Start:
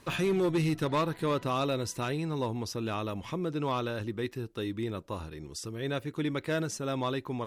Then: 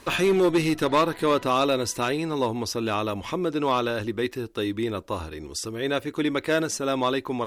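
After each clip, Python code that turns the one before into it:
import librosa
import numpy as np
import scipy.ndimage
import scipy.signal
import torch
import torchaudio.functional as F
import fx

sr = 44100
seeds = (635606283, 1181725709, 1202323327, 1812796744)

y = fx.peak_eq(x, sr, hz=140.0, db=-11.0, octaves=0.85)
y = y * 10.0 ** (8.5 / 20.0)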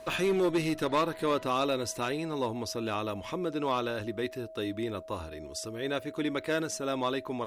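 y = x + 10.0 ** (-38.0 / 20.0) * np.sin(2.0 * np.pi * 640.0 * np.arange(len(x)) / sr)
y = y * 10.0 ** (-6.5 / 20.0)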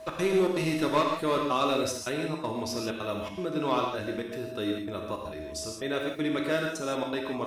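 y = fx.step_gate(x, sr, bpm=160, pattern='x.xxx.xxxx', floor_db=-24.0, edge_ms=4.5)
y = fx.rev_gated(y, sr, seeds[0], gate_ms=190, shape='flat', drr_db=0.5)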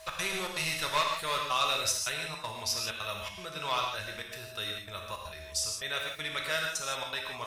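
y = fx.tone_stack(x, sr, knobs='10-0-10')
y = y * 10.0 ** (7.0 / 20.0)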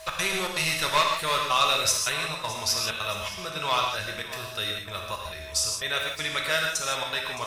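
y = fx.echo_feedback(x, sr, ms=616, feedback_pct=54, wet_db=-16.5)
y = y * 10.0 ** (6.0 / 20.0)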